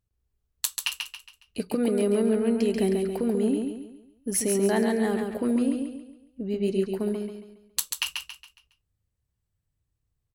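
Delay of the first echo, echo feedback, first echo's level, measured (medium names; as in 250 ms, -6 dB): 138 ms, 38%, -5.0 dB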